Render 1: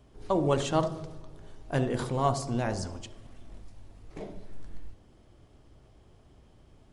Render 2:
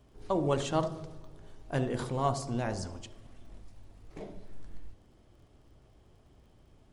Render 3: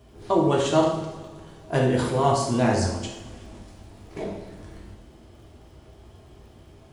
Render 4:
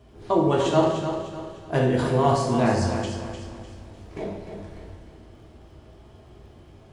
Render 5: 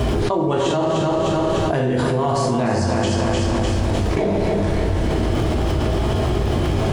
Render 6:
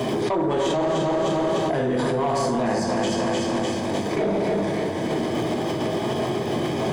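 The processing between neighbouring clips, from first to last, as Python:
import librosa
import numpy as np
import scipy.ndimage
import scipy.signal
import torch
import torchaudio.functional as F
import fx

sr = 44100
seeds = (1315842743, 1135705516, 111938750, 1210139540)

y1 = fx.dmg_crackle(x, sr, seeds[0], per_s=46.0, level_db=-56.0)
y1 = y1 * 10.0 ** (-3.0 / 20.0)
y2 = scipy.signal.sosfilt(scipy.signal.butter(2, 46.0, 'highpass', fs=sr, output='sos'), y1)
y2 = fx.rider(y2, sr, range_db=10, speed_s=0.5)
y2 = fx.rev_double_slope(y2, sr, seeds[1], early_s=0.64, late_s=2.3, knee_db=-18, drr_db=-2.0)
y2 = y2 * 10.0 ** (7.0 / 20.0)
y3 = fx.high_shelf(y2, sr, hz=6400.0, db=-8.5)
y3 = fx.echo_feedback(y3, sr, ms=301, feedback_pct=38, wet_db=-8.5)
y4 = fx.env_flatten(y3, sr, amount_pct=100)
y4 = y4 * 10.0 ** (-4.0 / 20.0)
y5 = scipy.signal.sosfilt(scipy.signal.butter(4, 130.0, 'highpass', fs=sr, output='sos'), y4)
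y5 = fx.notch_comb(y5, sr, f0_hz=1400.0)
y5 = 10.0 ** (-16.0 / 20.0) * np.tanh(y5 / 10.0 ** (-16.0 / 20.0))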